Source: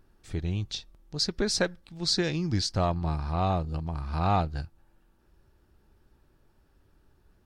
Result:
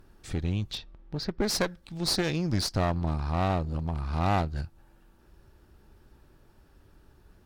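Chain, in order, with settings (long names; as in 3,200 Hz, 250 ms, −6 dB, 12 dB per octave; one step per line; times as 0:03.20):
0:00.70–0:01.42: low-pass filter 3,800 Hz → 1,900 Hz 12 dB per octave
in parallel at +0.5 dB: downward compressor, threshold −39 dBFS, peak gain reduction 17.5 dB
on the sum: asymmetric clip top −32 dBFS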